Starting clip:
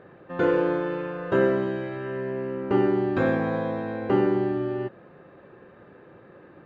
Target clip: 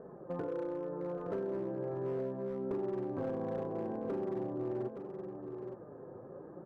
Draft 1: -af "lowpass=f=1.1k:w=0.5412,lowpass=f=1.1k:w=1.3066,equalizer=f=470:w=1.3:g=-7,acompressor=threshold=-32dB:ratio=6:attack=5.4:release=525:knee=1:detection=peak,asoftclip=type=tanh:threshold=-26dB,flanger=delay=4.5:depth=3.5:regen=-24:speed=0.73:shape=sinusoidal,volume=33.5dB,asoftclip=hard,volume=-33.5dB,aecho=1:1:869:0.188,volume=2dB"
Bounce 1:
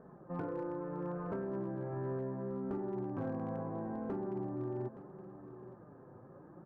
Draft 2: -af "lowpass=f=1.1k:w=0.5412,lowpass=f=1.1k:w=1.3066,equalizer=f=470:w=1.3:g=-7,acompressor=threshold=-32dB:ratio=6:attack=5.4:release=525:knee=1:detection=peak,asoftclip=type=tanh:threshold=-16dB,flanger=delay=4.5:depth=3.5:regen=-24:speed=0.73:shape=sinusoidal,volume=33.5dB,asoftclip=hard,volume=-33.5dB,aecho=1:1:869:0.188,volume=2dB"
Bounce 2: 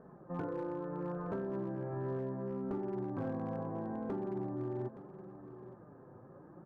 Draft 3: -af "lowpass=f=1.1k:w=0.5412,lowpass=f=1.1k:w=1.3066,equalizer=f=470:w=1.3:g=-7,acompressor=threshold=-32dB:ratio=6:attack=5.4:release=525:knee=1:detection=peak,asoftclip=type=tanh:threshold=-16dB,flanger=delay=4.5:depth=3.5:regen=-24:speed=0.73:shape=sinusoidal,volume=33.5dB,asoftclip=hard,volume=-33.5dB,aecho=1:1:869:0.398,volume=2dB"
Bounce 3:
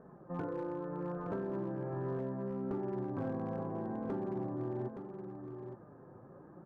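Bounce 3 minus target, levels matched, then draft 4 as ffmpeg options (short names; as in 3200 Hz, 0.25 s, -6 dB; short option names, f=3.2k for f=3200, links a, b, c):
500 Hz band -2.5 dB
-af "lowpass=f=1.1k:w=0.5412,lowpass=f=1.1k:w=1.3066,equalizer=f=470:w=1.3:g=3,acompressor=threshold=-32dB:ratio=6:attack=5.4:release=525:knee=1:detection=peak,asoftclip=type=tanh:threshold=-16dB,flanger=delay=4.5:depth=3.5:regen=-24:speed=0.73:shape=sinusoidal,volume=33.5dB,asoftclip=hard,volume=-33.5dB,aecho=1:1:869:0.398,volume=2dB"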